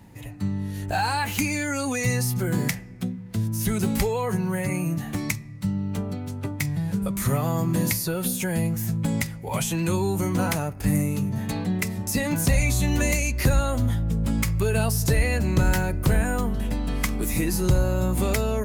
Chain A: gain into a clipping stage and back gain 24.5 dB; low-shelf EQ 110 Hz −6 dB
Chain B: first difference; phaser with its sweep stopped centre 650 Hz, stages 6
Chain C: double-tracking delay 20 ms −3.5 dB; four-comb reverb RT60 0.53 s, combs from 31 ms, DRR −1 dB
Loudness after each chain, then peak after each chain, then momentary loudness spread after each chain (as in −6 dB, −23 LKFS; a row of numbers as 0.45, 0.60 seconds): −29.5, −32.5, −20.5 LKFS; −21.5, −10.5, −3.5 dBFS; 5, 18, 6 LU